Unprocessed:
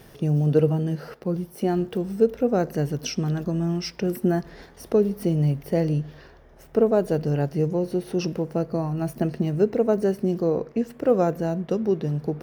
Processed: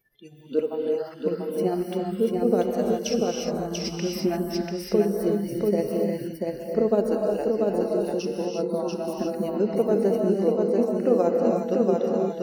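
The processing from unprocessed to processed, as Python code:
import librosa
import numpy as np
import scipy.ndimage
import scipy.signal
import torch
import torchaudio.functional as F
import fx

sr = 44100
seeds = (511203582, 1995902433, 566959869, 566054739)

y = fx.dynamic_eq(x, sr, hz=1600.0, q=1.9, threshold_db=-47.0, ratio=4.0, max_db=-5)
y = y * (1.0 - 0.53 / 2.0 + 0.53 / 2.0 * np.cos(2.0 * np.pi * 15.0 * (np.arange(len(y)) / sr)))
y = fx.noise_reduce_blind(y, sr, reduce_db=29)
y = y + 10.0 ** (-3.0 / 20.0) * np.pad(y, (int(689 * sr / 1000.0), 0))[:len(y)]
y = fx.rev_gated(y, sr, seeds[0], gate_ms=380, shape='rising', drr_db=1.0)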